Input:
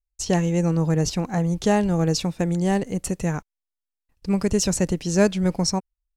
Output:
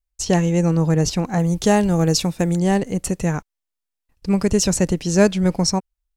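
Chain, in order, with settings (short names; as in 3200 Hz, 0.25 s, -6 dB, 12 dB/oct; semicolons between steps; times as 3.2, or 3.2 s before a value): 1.39–2.59 high shelf 8500 Hz +9.5 dB; gain +3.5 dB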